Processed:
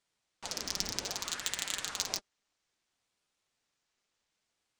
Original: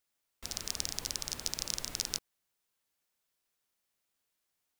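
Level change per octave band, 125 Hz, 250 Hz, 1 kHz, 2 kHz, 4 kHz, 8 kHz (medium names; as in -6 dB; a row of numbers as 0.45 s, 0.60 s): -2.0 dB, +2.5 dB, +6.5 dB, +6.5 dB, +1.0 dB, 0.0 dB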